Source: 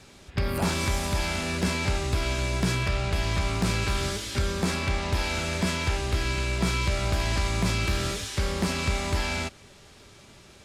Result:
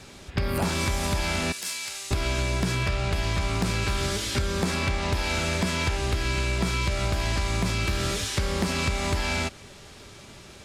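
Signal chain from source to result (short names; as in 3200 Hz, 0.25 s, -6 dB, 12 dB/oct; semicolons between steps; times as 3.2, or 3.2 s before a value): 1.52–2.11 differentiator; compressor, threshold -27 dBFS, peak gain reduction 7.5 dB; gain +5 dB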